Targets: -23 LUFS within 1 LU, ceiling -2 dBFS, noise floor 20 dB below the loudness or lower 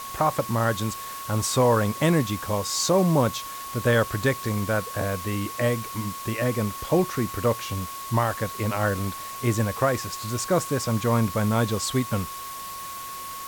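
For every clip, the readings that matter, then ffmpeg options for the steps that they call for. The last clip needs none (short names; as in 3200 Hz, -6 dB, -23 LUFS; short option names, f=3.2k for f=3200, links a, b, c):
steady tone 1100 Hz; tone level -35 dBFS; noise floor -36 dBFS; noise floor target -46 dBFS; loudness -25.5 LUFS; peak -9.5 dBFS; loudness target -23.0 LUFS
-> -af "bandreject=f=1.1k:w=30"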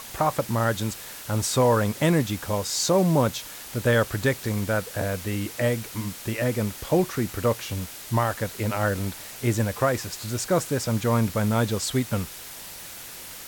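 steady tone none; noise floor -40 dBFS; noise floor target -46 dBFS
-> -af "afftdn=nr=6:nf=-40"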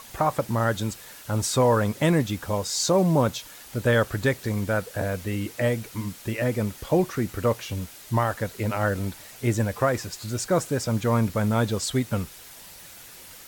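noise floor -45 dBFS; noise floor target -46 dBFS
-> -af "afftdn=nr=6:nf=-45"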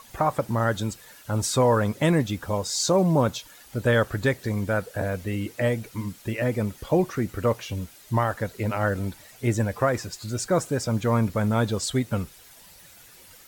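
noise floor -50 dBFS; loudness -25.5 LUFS; peak -10.0 dBFS; loudness target -23.0 LUFS
-> -af "volume=2.5dB"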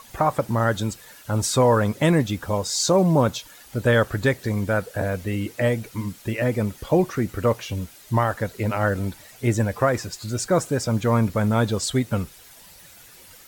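loudness -23.0 LUFS; peak -7.5 dBFS; noise floor -48 dBFS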